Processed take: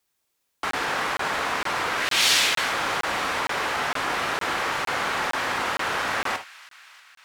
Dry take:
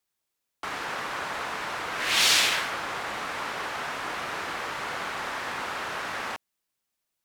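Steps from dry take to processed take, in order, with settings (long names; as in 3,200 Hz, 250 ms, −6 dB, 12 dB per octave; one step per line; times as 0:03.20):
in parallel at −1.5 dB: compressor whose output falls as the input rises −33 dBFS
on the sum: delay with a high-pass on its return 319 ms, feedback 70%, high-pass 1,900 Hz, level −17.5 dB
reverb whose tail is shaped and stops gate 90 ms flat, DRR 7.5 dB
regular buffer underruns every 0.46 s, samples 1,024, zero, from 0:00.71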